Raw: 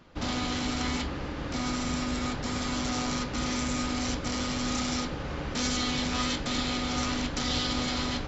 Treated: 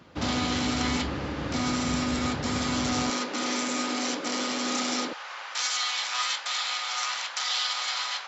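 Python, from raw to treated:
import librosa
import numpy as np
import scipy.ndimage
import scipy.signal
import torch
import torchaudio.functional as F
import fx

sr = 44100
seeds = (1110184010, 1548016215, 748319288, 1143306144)

y = fx.highpass(x, sr, hz=fx.steps((0.0, 67.0), (3.1, 260.0), (5.13, 860.0)), slope=24)
y = y * 10.0 ** (3.5 / 20.0)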